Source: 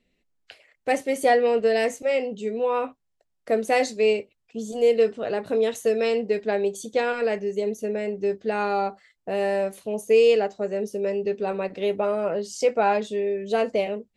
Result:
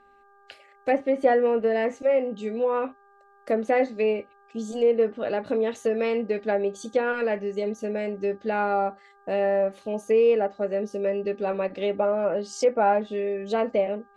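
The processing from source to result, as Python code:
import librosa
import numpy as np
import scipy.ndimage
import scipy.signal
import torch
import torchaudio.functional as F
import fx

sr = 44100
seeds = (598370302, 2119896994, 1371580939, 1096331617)

y = fx.dmg_buzz(x, sr, base_hz=400.0, harmonics=4, level_db=-57.0, tilt_db=-1, odd_only=False)
y = y + 0.32 * np.pad(y, (int(3.5 * sr / 1000.0), 0))[:len(y)]
y = fx.env_lowpass_down(y, sr, base_hz=1600.0, full_db=-19.0)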